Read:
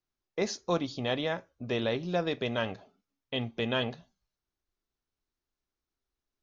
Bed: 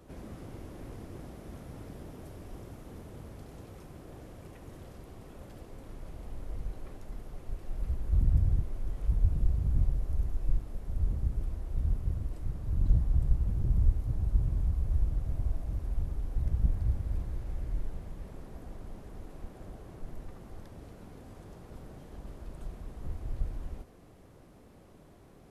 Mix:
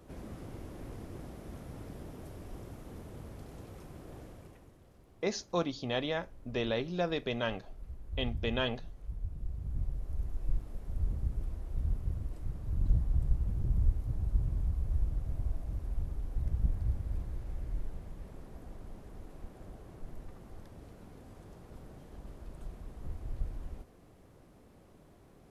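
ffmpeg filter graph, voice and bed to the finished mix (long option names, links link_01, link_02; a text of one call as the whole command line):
ffmpeg -i stem1.wav -i stem2.wav -filter_complex "[0:a]adelay=4850,volume=-2.5dB[link_01];[1:a]volume=9dB,afade=type=out:start_time=4.19:duration=0.55:silence=0.251189,afade=type=in:start_time=9.37:duration=1.27:silence=0.334965[link_02];[link_01][link_02]amix=inputs=2:normalize=0" out.wav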